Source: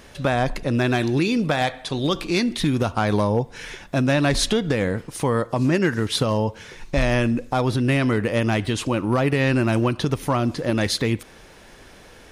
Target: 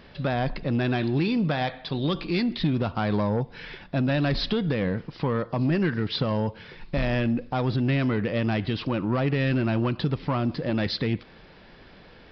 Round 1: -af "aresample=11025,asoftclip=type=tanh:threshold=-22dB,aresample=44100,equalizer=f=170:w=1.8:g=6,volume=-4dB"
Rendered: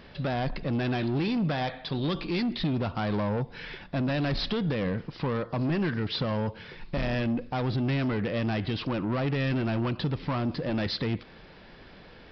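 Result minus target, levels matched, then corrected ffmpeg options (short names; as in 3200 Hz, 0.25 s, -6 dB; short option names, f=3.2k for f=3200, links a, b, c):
soft clip: distortion +7 dB
-af "aresample=11025,asoftclip=type=tanh:threshold=-15dB,aresample=44100,equalizer=f=170:w=1.8:g=6,volume=-4dB"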